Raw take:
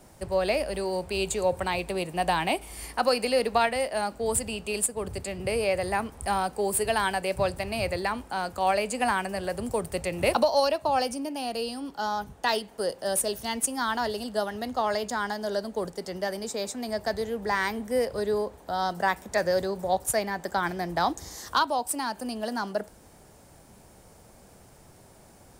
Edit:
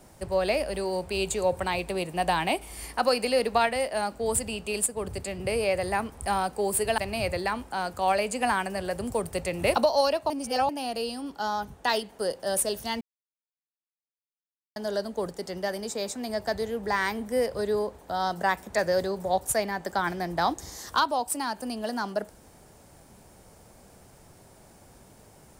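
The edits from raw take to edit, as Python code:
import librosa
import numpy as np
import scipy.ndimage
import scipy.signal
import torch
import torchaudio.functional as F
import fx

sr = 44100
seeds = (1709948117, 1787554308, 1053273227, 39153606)

y = fx.edit(x, sr, fx.cut(start_s=6.98, length_s=0.59),
    fx.reverse_span(start_s=10.89, length_s=0.39),
    fx.silence(start_s=13.6, length_s=1.75), tone=tone)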